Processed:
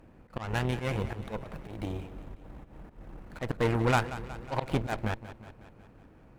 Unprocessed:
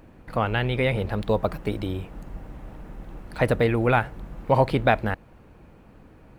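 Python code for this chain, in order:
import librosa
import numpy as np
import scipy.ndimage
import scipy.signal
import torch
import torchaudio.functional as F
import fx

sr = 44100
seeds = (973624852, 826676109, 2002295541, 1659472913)

p1 = scipy.signal.medfilt(x, 9)
p2 = fx.cheby_harmonics(p1, sr, harmonics=(6, 8), levels_db=(-26, -15), full_scale_db=-5.5)
p3 = fx.auto_swell(p2, sr, attack_ms=134.0)
p4 = p3 + fx.echo_feedback(p3, sr, ms=183, feedback_pct=59, wet_db=-14.5, dry=0)
y = p4 * 10.0 ** (-5.5 / 20.0)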